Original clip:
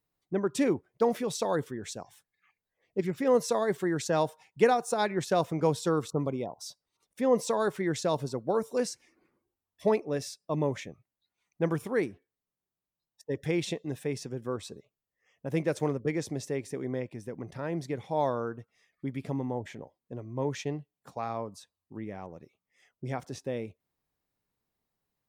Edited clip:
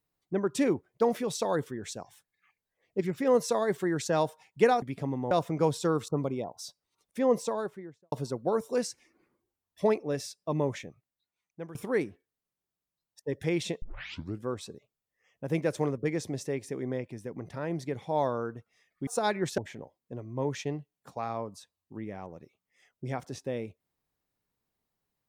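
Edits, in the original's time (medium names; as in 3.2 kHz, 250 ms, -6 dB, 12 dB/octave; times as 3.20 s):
4.82–5.33 s: swap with 19.09–19.58 s
7.21–8.14 s: studio fade out
10.77–11.77 s: fade out, to -18 dB
13.84 s: tape start 0.61 s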